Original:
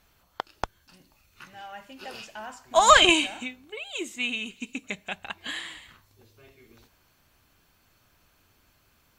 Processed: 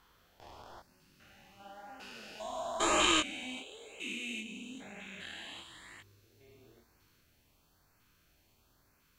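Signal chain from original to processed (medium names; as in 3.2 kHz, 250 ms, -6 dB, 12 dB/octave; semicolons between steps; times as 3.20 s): spectrogram pixelated in time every 400 ms; LFO notch saw up 1 Hz 580–3800 Hz; chorus 1 Hz, delay 19.5 ms, depth 7.6 ms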